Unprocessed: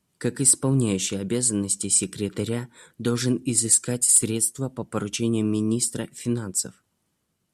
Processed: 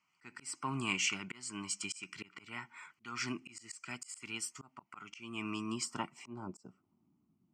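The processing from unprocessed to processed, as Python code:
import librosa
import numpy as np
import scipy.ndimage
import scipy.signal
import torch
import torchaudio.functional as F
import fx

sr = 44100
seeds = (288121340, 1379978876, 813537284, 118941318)

y = fx.fixed_phaser(x, sr, hz=2500.0, stages=8)
y = fx.auto_swell(y, sr, attack_ms=356.0)
y = fx.filter_sweep_bandpass(y, sr, from_hz=1800.0, to_hz=270.0, start_s=5.65, end_s=7.06, q=1.9)
y = F.gain(torch.from_numpy(y), 10.0).numpy()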